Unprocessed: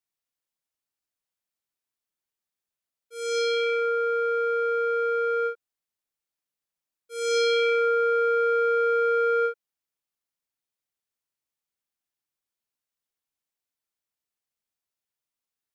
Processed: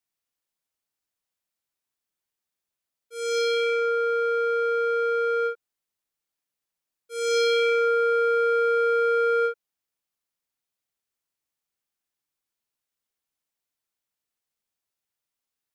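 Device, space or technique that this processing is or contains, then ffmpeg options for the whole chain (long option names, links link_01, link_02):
parallel distortion: -filter_complex "[0:a]asplit=2[link_01][link_02];[link_02]asoftclip=type=hard:threshold=-31dB,volume=-11dB[link_03];[link_01][link_03]amix=inputs=2:normalize=0"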